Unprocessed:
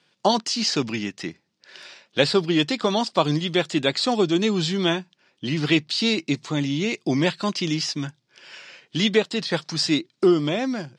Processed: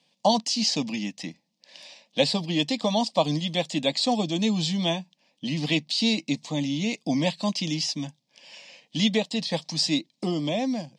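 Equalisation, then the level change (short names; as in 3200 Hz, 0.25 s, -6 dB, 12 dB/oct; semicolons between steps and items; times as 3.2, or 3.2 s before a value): fixed phaser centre 380 Hz, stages 6; 0.0 dB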